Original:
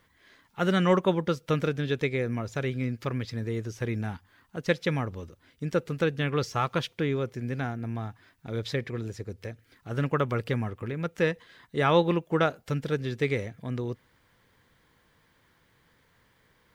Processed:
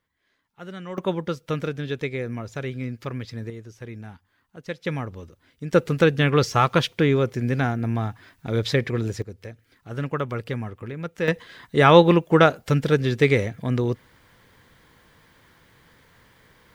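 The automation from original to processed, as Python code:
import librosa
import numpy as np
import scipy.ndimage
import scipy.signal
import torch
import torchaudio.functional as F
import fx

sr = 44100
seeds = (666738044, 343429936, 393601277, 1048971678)

y = fx.gain(x, sr, db=fx.steps((0.0, -13.0), (0.98, -0.5), (3.5, -7.0), (4.85, 0.0), (5.73, 8.5), (9.22, -0.5), (11.28, 9.0)))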